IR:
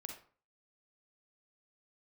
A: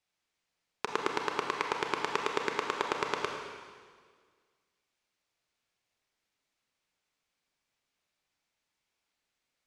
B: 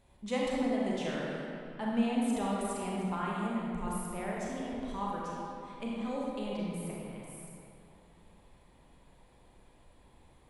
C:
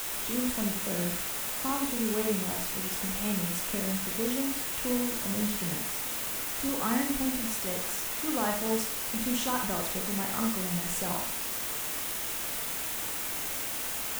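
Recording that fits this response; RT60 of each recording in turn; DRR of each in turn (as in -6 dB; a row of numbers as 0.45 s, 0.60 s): C; 1.8 s, 2.9 s, 0.45 s; 2.0 dB, -5.0 dB, 2.5 dB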